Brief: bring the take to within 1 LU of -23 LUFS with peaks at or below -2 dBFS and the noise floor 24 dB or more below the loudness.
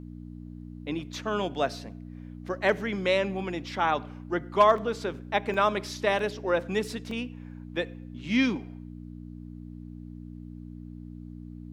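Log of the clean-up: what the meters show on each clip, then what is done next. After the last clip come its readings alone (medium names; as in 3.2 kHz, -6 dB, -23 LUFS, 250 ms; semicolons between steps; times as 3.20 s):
dropouts 4; longest dropout 2.6 ms; hum 60 Hz; highest harmonic 300 Hz; hum level -40 dBFS; loudness -28.5 LUFS; peak level -9.5 dBFS; loudness target -23.0 LUFS
-> interpolate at 4.78/5.54/6.19/7.11 s, 2.6 ms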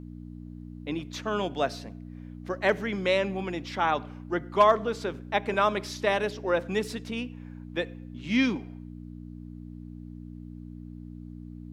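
dropouts 0; hum 60 Hz; highest harmonic 300 Hz; hum level -40 dBFS
-> de-hum 60 Hz, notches 5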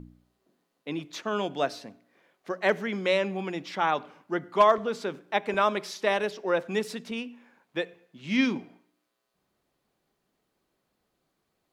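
hum not found; loudness -28.5 LUFS; peak level -10.0 dBFS; loudness target -23.0 LUFS
-> trim +5.5 dB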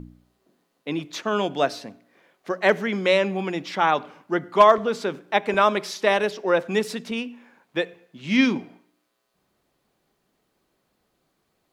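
loudness -23.0 LUFS; peak level -4.5 dBFS; noise floor -72 dBFS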